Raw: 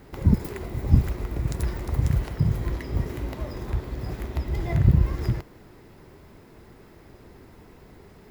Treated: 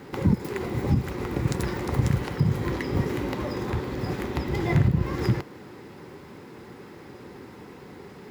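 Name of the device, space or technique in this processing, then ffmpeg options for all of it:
PA system with an anti-feedback notch: -af "highpass=140,asuperstop=centerf=650:order=4:qfactor=6.9,alimiter=limit=0.119:level=0:latency=1:release=316,highshelf=f=10000:g=-10,volume=2.37"

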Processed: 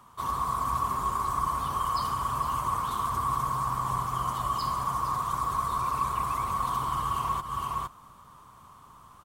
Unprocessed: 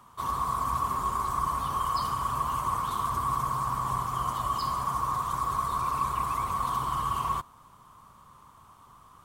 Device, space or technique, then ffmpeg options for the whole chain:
ducked delay: -filter_complex "[0:a]asplit=3[s0][s1][s2];[s1]adelay=461,volume=0.75[s3];[s2]apad=whole_len=427937[s4];[s3][s4]sidechaincompress=threshold=0.01:ratio=8:attack=26:release=167[s5];[s0][s5]amix=inputs=2:normalize=0"

